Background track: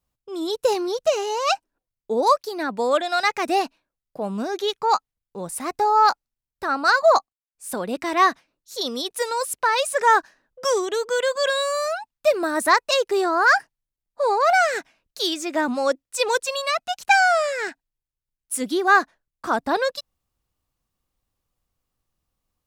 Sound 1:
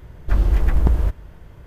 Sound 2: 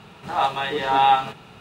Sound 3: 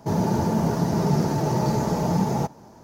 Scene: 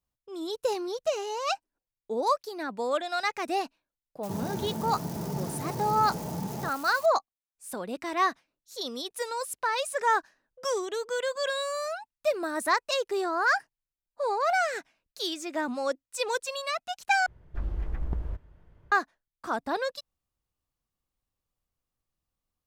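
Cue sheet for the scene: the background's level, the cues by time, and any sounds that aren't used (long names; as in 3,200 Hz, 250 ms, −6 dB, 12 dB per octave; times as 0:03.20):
background track −8 dB
0:04.23: mix in 3 −12 dB + spike at every zero crossing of −21 dBFS
0:17.26: overwrite with 1 −15 dB + low-pass filter 2,800 Hz 6 dB per octave
not used: 2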